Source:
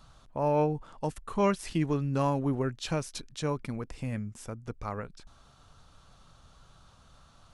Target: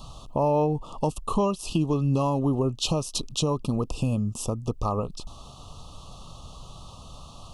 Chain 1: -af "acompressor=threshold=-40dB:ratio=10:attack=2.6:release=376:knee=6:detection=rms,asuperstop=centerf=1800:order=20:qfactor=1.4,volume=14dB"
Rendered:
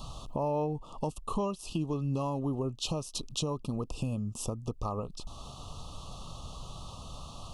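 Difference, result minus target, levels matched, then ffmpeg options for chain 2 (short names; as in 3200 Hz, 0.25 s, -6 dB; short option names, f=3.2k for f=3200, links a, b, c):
compressor: peak gain reduction +8 dB
-af "acompressor=threshold=-31dB:ratio=10:attack=2.6:release=376:knee=6:detection=rms,asuperstop=centerf=1800:order=20:qfactor=1.4,volume=14dB"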